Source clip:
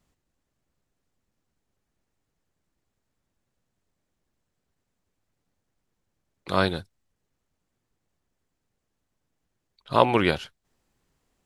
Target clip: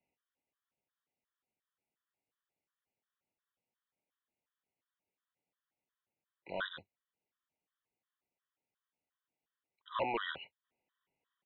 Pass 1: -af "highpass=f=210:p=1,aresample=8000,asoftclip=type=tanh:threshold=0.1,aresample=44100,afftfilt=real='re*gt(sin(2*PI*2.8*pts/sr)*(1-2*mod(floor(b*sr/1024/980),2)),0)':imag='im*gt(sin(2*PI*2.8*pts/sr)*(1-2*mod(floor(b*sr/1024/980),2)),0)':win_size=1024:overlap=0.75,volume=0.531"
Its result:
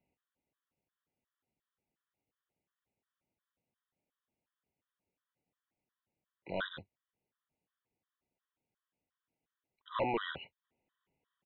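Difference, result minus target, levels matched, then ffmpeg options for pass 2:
250 Hz band +4.0 dB
-af "highpass=f=700:p=1,aresample=8000,asoftclip=type=tanh:threshold=0.1,aresample=44100,afftfilt=real='re*gt(sin(2*PI*2.8*pts/sr)*(1-2*mod(floor(b*sr/1024/980),2)),0)':imag='im*gt(sin(2*PI*2.8*pts/sr)*(1-2*mod(floor(b*sr/1024/980),2)),0)':win_size=1024:overlap=0.75,volume=0.531"

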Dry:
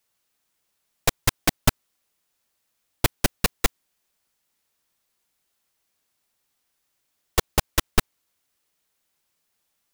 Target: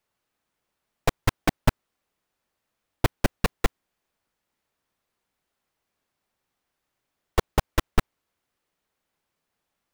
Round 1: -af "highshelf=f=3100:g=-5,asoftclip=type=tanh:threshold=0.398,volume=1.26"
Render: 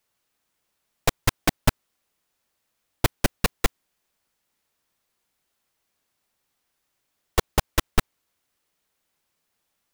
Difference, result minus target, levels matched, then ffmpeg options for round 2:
8 kHz band +5.5 dB
-af "highshelf=f=3100:g=-13.5,asoftclip=type=tanh:threshold=0.398,volume=1.26"

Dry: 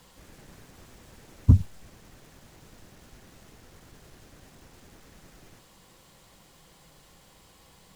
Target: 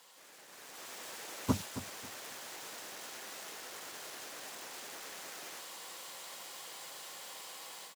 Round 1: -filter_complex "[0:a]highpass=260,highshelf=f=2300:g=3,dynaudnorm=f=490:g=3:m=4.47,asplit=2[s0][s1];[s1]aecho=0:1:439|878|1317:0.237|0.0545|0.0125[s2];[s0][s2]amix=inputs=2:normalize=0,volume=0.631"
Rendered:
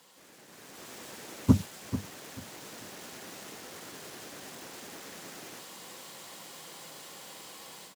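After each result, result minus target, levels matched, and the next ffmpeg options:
echo 168 ms late; 250 Hz band +4.5 dB
-filter_complex "[0:a]highpass=260,highshelf=f=2300:g=3,dynaudnorm=f=490:g=3:m=4.47,asplit=2[s0][s1];[s1]aecho=0:1:271|542|813:0.237|0.0545|0.0125[s2];[s0][s2]amix=inputs=2:normalize=0,volume=0.631"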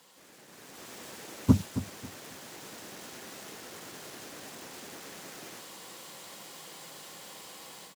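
250 Hz band +4.5 dB
-filter_complex "[0:a]highpass=560,highshelf=f=2300:g=3,dynaudnorm=f=490:g=3:m=4.47,asplit=2[s0][s1];[s1]aecho=0:1:271|542|813:0.237|0.0545|0.0125[s2];[s0][s2]amix=inputs=2:normalize=0,volume=0.631"

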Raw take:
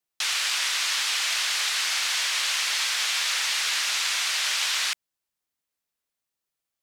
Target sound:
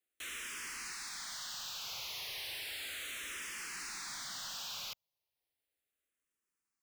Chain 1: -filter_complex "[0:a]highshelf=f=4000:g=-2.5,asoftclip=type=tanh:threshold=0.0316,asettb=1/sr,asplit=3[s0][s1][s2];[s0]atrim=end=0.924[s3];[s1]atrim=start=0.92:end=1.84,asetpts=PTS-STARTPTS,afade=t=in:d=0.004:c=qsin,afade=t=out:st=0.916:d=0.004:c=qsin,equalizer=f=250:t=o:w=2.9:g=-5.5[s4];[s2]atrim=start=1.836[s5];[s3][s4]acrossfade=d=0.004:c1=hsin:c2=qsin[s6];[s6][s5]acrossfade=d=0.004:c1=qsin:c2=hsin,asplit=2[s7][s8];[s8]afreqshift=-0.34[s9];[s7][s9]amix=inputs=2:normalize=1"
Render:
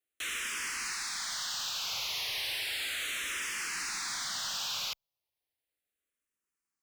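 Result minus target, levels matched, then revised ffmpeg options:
saturation: distortion -4 dB
-filter_complex "[0:a]highshelf=f=4000:g=-2.5,asoftclip=type=tanh:threshold=0.0106,asettb=1/sr,asplit=3[s0][s1][s2];[s0]atrim=end=0.924[s3];[s1]atrim=start=0.92:end=1.84,asetpts=PTS-STARTPTS,afade=t=in:d=0.004:c=qsin,afade=t=out:st=0.916:d=0.004:c=qsin,equalizer=f=250:t=o:w=2.9:g=-5.5[s4];[s2]atrim=start=1.836[s5];[s3][s4]acrossfade=d=0.004:c1=hsin:c2=qsin[s6];[s6][s5]acrossfade=d=0.004:c1=qsin:c2=hsin,asplit=2[s7][s8];[s8]afreqshift=-0.34[s9];[s7][s9]amix=inputs=2:normalize=1"

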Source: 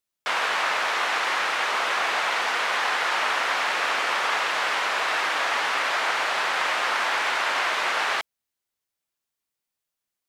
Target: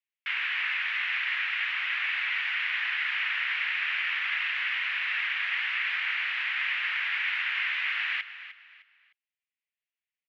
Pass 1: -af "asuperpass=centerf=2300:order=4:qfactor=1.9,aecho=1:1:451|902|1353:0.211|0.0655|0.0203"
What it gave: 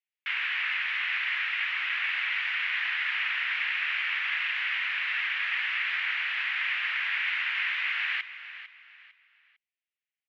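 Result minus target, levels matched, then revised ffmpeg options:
echo 146 ms late
-af "asuperpass=centerf=2300:order=4:qfactor=1.9,aecho=1:1:305|610|915:0.211|0.0655|0.0203"

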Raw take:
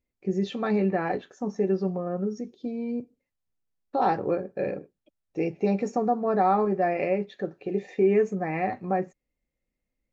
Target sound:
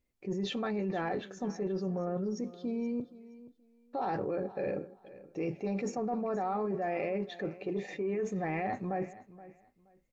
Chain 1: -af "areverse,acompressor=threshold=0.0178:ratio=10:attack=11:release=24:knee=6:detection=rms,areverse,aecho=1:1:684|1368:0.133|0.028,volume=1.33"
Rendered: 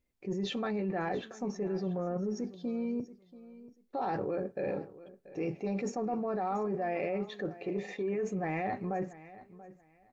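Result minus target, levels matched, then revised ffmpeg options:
echo 210 ms late
-af "areverse,acompressor=threshold=0.0178:ratio=10:attack=11:release=24:knee=6:detection=rms,areverse,aecho=1:1:474|948:0.133|0.028,volume=1.33"

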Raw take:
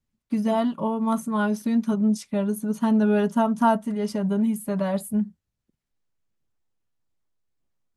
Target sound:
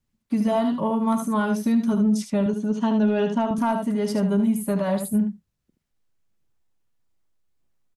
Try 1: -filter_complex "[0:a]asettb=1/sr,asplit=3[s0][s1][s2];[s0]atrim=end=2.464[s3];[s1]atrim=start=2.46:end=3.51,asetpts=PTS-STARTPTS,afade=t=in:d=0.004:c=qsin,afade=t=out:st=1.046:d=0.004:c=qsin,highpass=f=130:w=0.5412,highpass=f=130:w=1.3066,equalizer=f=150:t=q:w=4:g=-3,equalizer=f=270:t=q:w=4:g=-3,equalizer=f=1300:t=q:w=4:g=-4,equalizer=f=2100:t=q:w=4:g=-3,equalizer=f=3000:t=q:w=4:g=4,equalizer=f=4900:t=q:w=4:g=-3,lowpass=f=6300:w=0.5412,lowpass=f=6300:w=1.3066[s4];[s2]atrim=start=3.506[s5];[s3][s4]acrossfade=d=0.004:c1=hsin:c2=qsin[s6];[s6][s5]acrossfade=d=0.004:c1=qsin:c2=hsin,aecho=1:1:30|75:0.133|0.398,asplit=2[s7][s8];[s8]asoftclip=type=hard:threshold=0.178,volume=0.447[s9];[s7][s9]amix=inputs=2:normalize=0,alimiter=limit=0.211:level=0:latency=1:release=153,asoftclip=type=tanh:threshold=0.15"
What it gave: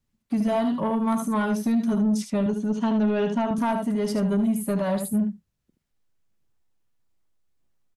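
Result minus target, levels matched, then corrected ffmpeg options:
saturation: distortion +15 dB
-filter_complex "[0:a]asettb=1/sr,asplit=3[s0][s1][s2];[s0]atrim=end=2.464[s3];[s1]atrim=start=2.46:end=3.51,asetpts=PTS-STARTPTS,afade=t=in:d=0.004:c=qsin,afade=t=out:st=1.046:d=0.004:c=qsin,highpass=f=130:w=0.5412,highpass=f=130:w=1.3066,equalizer=f=150:t=q:w=4:g=-3,equalizer=f=270:t=q:w=4:g=-3,equalizer=f=1300:t=q:w=4:g=-4,equalizer=f=2100:t=q:w=4:g=-3,equalizer=f=3000:t=q:w=4:g=4,equalizer=f=4900:t=q:w=4:g=-3,lowpass=f=6300:w=0.5412,lowpass=f=6300:w=1.3066[s4];[s2]atrim=start=3.506[s5];[s3][s4]acrossfade=d=0.004:c1=hsin:c2=qsin[s6];[s6][s5]acrossfade=d=0.004:c1=qsin:c2=hsin,aecho=1:1:30|75:0.133|0.398,asplit=2[s7][s8];[s8]asoftclip=type=hard:threshold=0.178,volume=0.447[s9];[s7][s9]amix=inputs=2:normalize=0,alimiter=limit=0.211:level=0:latency=1:release=153,asoftclip=type=tanh:threshold=0.422"

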